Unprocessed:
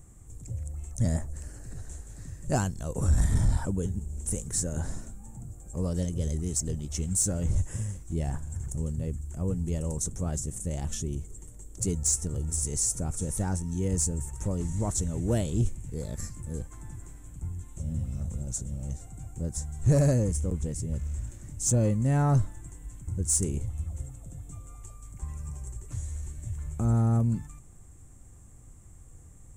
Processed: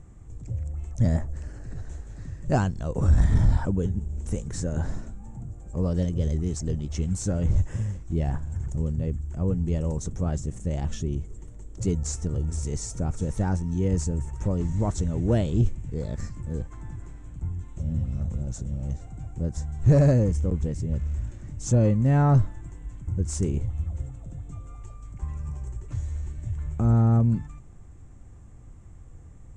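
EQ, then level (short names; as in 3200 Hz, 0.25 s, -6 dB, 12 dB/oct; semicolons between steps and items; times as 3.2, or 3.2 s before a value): air absorption 150 m; +4.5 dB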